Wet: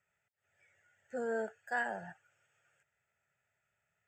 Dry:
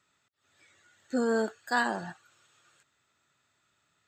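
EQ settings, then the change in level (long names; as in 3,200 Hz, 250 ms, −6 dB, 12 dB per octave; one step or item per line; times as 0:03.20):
low-pass filter 3,900 Hz 6 dB per octave
phaser with its sweep stopped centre 1,100 Hz, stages 6
−4.5 dB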